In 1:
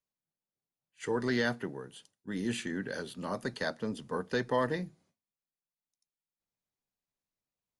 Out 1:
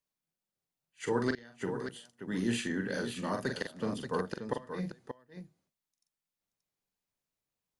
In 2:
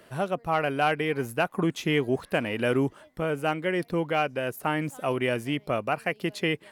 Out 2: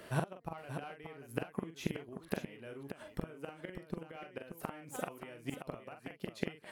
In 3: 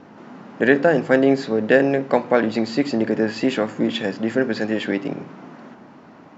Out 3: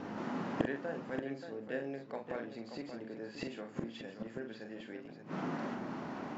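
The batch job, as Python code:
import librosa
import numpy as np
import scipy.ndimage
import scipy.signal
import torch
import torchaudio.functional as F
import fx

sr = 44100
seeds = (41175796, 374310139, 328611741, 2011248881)

y = fx.gate_flip(x, sr, shuts_db=-20.0, range_db=-26)
y = fx.echo_multitap(y, sr, ms=(43, 580), db=(-6.0, -8.5))
y = y * librosa.db_to_amplitude(1.0)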